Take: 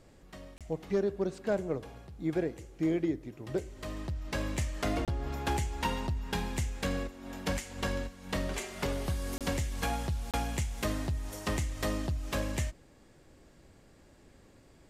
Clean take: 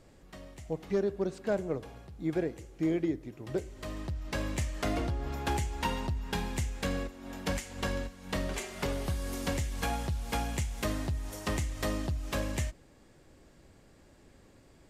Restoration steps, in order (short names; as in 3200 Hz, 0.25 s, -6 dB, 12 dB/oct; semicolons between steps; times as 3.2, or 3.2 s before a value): interpolate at 0.58/5.05/9.38/10.31, 27 ms